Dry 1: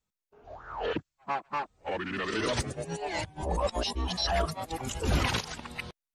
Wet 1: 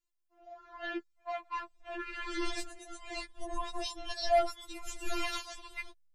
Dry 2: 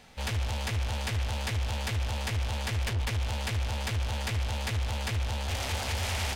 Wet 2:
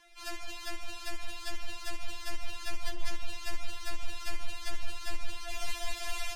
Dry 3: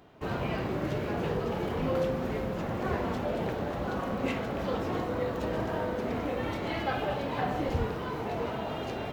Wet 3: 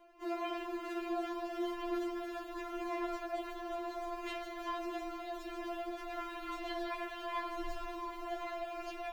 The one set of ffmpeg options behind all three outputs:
-af "asubboost=boost=12:cutoff=85,afftfilt=real='re*4*eq(mod(b,16),0)':imag='im*4*eq(mod(b,16),0)':win_size=2048:overlap=0.75,volume=-2.5dB"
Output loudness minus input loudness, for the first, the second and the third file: -5.0, -9.5, -8.5 LU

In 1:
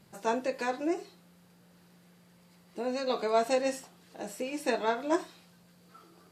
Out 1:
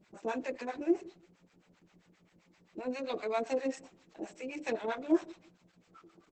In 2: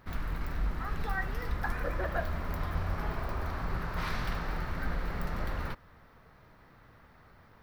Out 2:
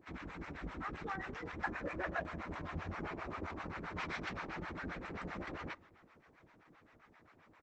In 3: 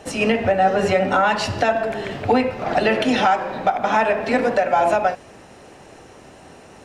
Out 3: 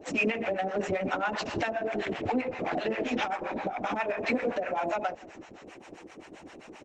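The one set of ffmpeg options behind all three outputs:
-filter_complex "[0:a]acompressor=threshold=-21dB:ratio=6,volume=17.5dB,asoftclip=hard,volume=-17.5dB,acrossover=split=620[a][b];[a]aeval=exprs='val(0)*(1-1/2+1/2*cos(2*PI*7.6*n/s))':c=same[c];[b]aeval=exprs='val(0)*(1-1/2-1/2*cos(2*PI*7.6*n/s))':c=same[d];[c][d]amix=inputs=2:normalize=0,highpass=110,equalizer=f=130:t=q:w=4:g=-7,equalizer=f=320:t=q:w=4:g=8,equalizer=f=2.3k:t=q:w=4:g=6,equalizer=f=4.6k:t=q:w=4:g=-6,lowpass=f=8k:w=0.5412,lowpass=f=8k:w=1.3066,asplit=2[e][f];[f]adelay=163,lowpass=f=1.2k:p=1,volume=-22.5dB,asplit=2[g][h];[h]adelay=163,lowpass=f=1.2k:p=1,volume=0.22[i];[g][i]amix=inputs=2:normalize=0[j];[e][j]amix=inputs=2:normalize=0" -ar 48000 -c:a libopus -b:a 12k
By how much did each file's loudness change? -4.0, -7.0, -11.5 LU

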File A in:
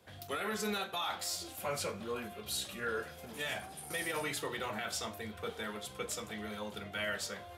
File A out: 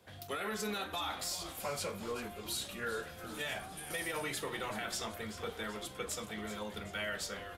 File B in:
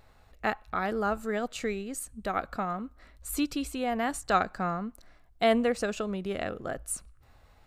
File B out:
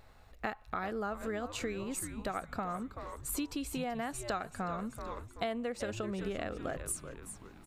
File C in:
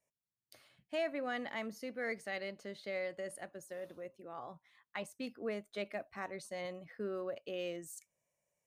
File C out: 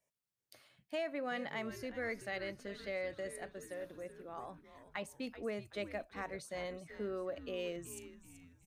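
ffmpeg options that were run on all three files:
-filter_complex "[0:a]asplit=2[a][b];[b]asplit=5[c][d][e][f][g];[c]adelay=381,afreqshift=-130,volume=-13dB[h];[d]adelay=762,afreqshift=-260,volume=-19.7dB[i];[e]adelay=1143,afreqshift=-390,volume=-26.5dB[j];[f]adelay=1524,afreqshift=-520,volume=-33.2dB[k];[g]adelay=1905,afreqshift=-650,volume=-40dB[l];[h][i][j][k][l]amix=inputs=5:normalize=0[m];[a][m]amix=inputs=2:normalize=0,acompressor=threshold=-33dB:ratio=6"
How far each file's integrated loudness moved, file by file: -1.0, -7.0, -0.5 LU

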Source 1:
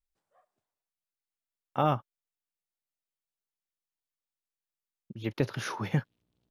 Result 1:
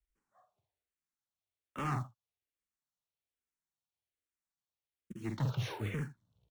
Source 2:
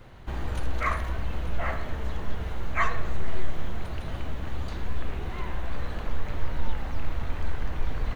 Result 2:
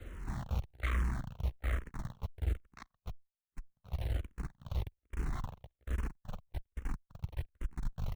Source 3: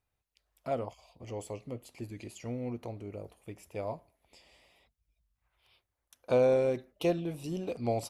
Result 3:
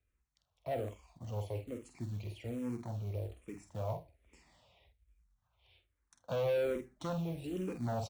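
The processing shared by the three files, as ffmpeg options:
-filter_complex "[0:a]highshelf=f=8.5k:g=-7.5,asplit=2[a][b];[b]adelay=48,volume=-7dB[c];[a][c]amix=inputs=2:normalize=0,acrossover=split=120|540|5100[d][e][f][g];[d]acontrast=37[h];[h][e][f][g]amix=inputs=4:normalize=0,aecho=1:1:79:0.0841,acompressor=threshold=-15dB:ratio=12,asoftclip=type=tanh:threshold=-29dB,aresample=22050,aresample=44100,highpass=f=49:p=1,lowshelf=f=120:g=7.5,acrusher=bits=6:mode=log:mix=0:aa=0.000001,bandreject=f=4.9k:w=7.7,asplit=2[i][j];[j]afreqshift=-1.2[k];[i][k]amix=inputs=2:normalize=1"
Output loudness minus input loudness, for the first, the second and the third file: -6.5, -7.0, -5.5 LU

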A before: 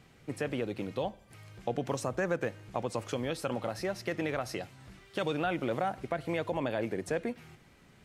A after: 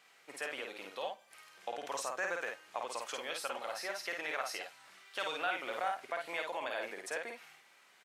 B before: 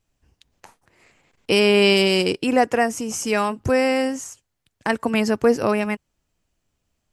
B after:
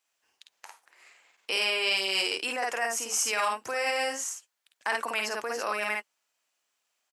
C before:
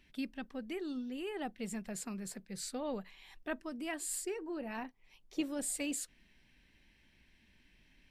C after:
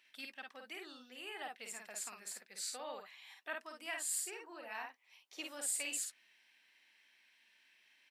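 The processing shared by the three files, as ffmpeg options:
-af "aecho=1:1:52|65:0.668|0.133,alimiter=limit=-14.5dB:level=0:latency=1:release=16,highpass=890"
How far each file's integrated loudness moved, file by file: -4.5, -8.5, -2.0 LU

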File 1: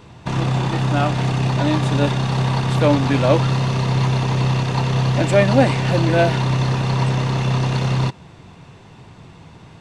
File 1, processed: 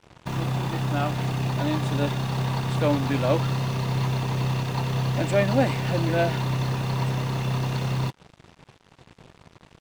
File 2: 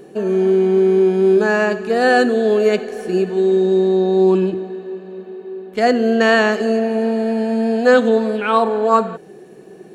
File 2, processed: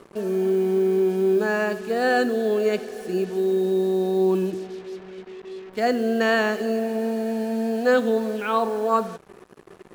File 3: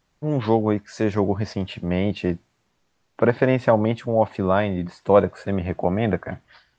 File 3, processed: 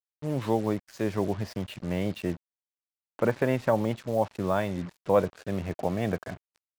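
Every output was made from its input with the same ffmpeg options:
-af "acrusher=bits=5:mix=0:aa=0.5,volume=-7dB"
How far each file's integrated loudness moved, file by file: -7.0, -7.0, -7.0 LU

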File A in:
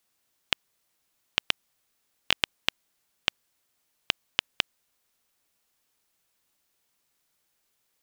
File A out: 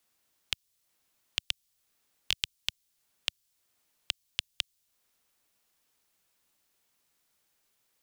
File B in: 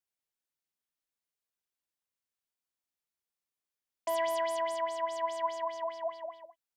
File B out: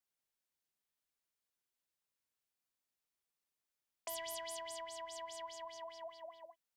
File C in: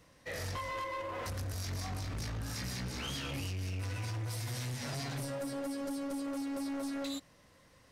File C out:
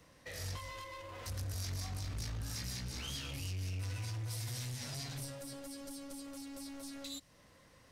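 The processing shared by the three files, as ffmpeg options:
-filter_complex "[0:a]acrossover=split=120|3000[a][b][c];[b]acompressor=threshold=-49dB:ratio=4[d];[a][d][c]amix=inputs=3:normalize=0"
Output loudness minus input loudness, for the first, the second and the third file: -5.0, -12.5, -4.0 LU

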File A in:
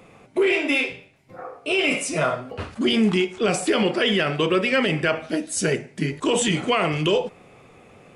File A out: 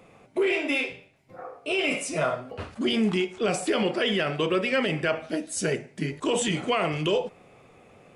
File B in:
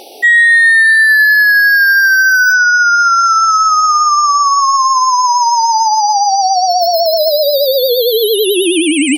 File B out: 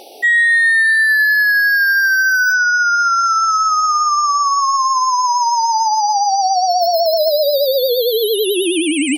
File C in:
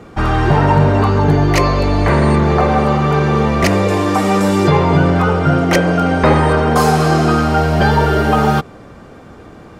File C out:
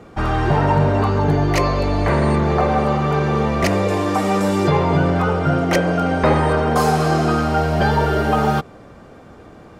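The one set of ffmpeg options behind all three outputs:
-af "equalizer=f=630:t=o:w=0.79:g=2.5,volume=-5dB"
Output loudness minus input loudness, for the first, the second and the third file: -4.5, -4.5, -4.5 LU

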